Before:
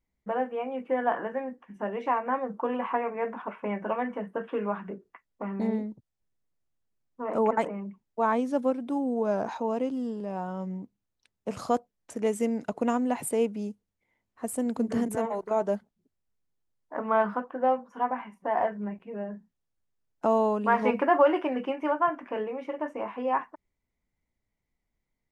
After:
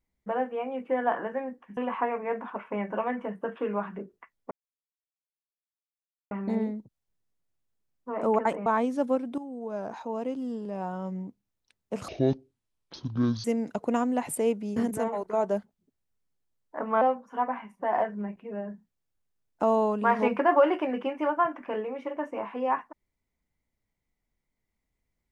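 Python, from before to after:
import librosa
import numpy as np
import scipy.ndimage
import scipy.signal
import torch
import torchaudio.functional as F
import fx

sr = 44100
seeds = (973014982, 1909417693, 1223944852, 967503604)

y = fx.edit(x, sr, fx.cut(start_s=1.77, length_s=0.92),
    fx.insert_silence(at_s=5.43, length_s=1.8),
    fx.cut(start_s=7.78, length_s=0.43),
    fx.fade_in_from(start_s=8.93, length_s=1.43, floor_db=-12.5),
    fx.speed_span(start_s=11.63, length_s=0.75, speed=0.55),
    fx.cut(start_s=13.7, length_s=1.24),
    fx.cut(start_s=17.19, length_s=0.45), tone=tone)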